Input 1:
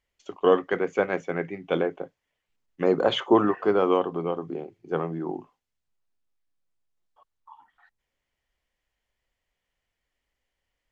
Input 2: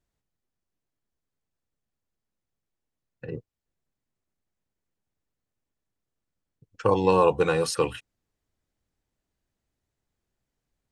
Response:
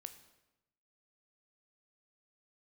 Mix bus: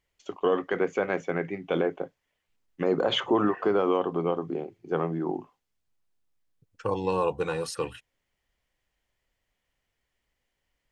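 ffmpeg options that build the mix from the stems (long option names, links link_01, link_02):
-filter_complex "[0:a]volume=1.5dB,asplit=2[link_01][link_02];[1:a]volume=-6.5dB[link_03];[link_02]apad=whole_len=481414[link_04];[link_03][link_04]sidechaincompress=threshold=-31dB:ratio=8:attack=16:release=290[link_05];[link_01][link_05]amix=inputs=2:normalize=0,alimiter=limit=-14.5dB:level=0:latency=1:release=65"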